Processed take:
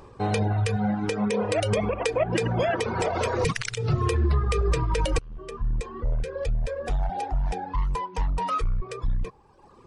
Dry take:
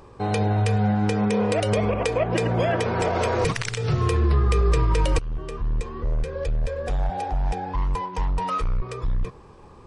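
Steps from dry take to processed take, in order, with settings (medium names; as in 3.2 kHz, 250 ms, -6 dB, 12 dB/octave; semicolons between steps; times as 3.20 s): reverb removal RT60 1.4 s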